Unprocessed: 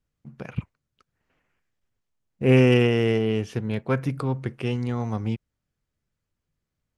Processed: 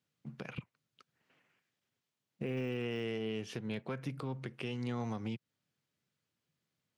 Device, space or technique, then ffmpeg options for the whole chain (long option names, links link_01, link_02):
broadcast voice chain: -af "highpass=frequency=120:width=0.5412,highpass=frequency=120:width=1.3066,deesser=0.95,acompressor=threshold=-32dB:ratio=4,equalizer=frequency=3500:width_type=o:width=1.5:gain=6,alimiter=level_in=2dB:limit=-24dB:level=0:latency=1:release=235,volume=-2dB,volume=-2dB"